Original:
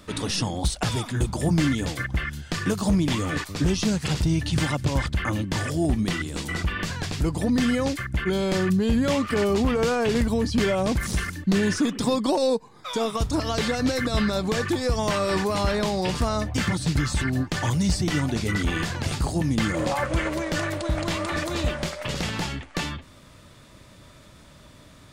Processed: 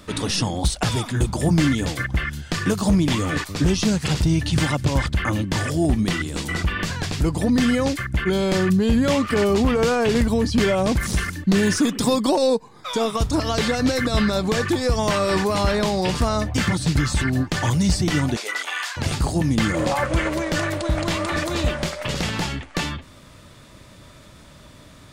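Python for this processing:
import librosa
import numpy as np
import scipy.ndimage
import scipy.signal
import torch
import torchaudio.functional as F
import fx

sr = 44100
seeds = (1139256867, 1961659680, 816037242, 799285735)

y = fx.high_shelf(x, sr, hz=9300.0, db=10.0, at=(11.58, 12.29))
y = fx.highpass(y, sr, hz=fx.line((18.35, 430.0), (18.96, 1000.0)), slope=24, at=(18.35, 18.96), fade=0.02)
y = y * librosa.db_to_amplitude(3.5)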